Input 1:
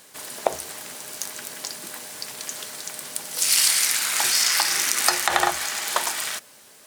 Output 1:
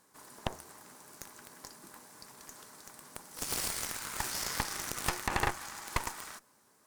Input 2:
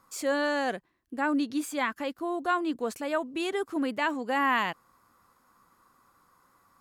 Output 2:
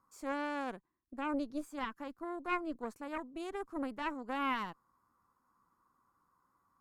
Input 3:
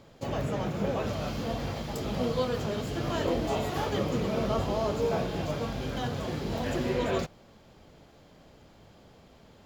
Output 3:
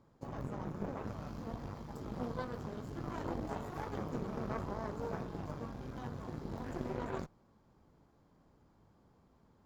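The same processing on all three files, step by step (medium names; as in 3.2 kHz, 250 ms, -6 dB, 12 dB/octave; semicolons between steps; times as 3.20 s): FFT filter 320 Hz 0 dB, 630 Hz -7 dB, 990 Hz +2 dB, 3 kHz -14 dB, 5.6 kHz -8 dB; Chebyshev shaper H 3 -16 dB, 4 -10 dB, 7 -30 dB, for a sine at -4 dBFS; saturation -15.5 dBFS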